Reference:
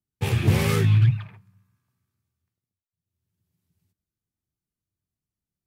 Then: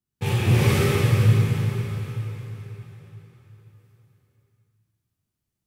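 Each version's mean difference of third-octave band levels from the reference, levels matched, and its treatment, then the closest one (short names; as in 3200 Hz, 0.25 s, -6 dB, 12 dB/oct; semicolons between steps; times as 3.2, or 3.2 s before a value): 9.0 dB: in parallel at 0 dB: compressor, threshold -27 dBFS, peak gain reduction 13 dB; on the sum: plate-style reverb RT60 4.2 s, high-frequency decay 0.9×, DRR -7 dB; gain -7 dB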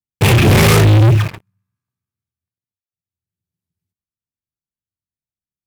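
7.0 dB: sample leveller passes 5; in parallel at -7.5 dB: bit-crush 4-bit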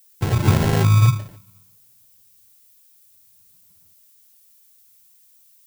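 5.0 dB: sample-rate reducer 1200 Hz, jitter 0%; added noise violet -58 dBFS; gain +3.5 dB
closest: third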